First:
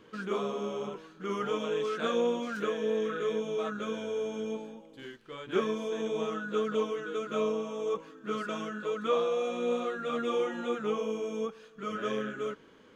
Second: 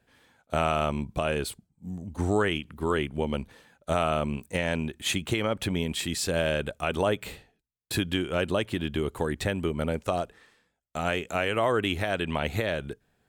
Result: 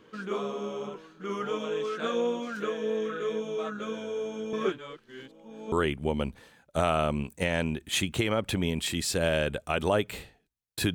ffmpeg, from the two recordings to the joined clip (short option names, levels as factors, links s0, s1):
-filter_complex "[0:a]apad=whole_dur=10.94,atrim=end=10.94,asplit=2[s0][s1];[s0]atrim=end=4.532[s2];[s1]atrim=start=4.528:end=5.722,asetpts=PTS-STARTPTS,areverse[s3];[1:a]atrim=start=2.848:end=8.07[s4];[s2][s3]acrossfade=d=0.004:c1=hsin:c2=hsin[s5];[s5][s4]acrossfade=d=0.004:c1=hsin:c2=hsin"